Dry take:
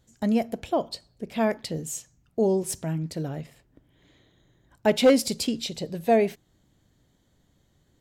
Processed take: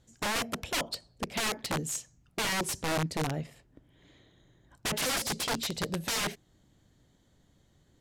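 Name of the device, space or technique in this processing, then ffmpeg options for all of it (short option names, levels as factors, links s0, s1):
overflowing digital effects unit: -af "aeval=exprs='(mod(16.8*val(0)+1,2)-1)/16.8':c=same,lowpass=12000"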